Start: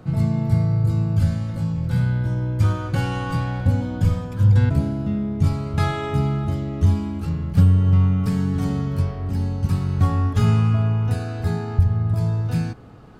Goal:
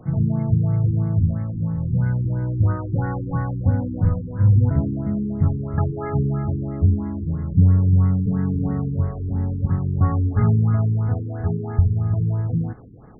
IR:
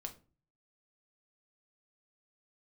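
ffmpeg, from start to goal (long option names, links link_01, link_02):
-af "afftfilt=real='re*lt(b*sr/1024,420*pow(2200/420,0.5+0.5*sin(2*PI*3*pts/sr)))':imag='im*lt(b*sr/1024,420*pow(2200/420,0.5+0.5*sin(2*PI*3*pts/sr)))':win_size=1024:overlap=0.75"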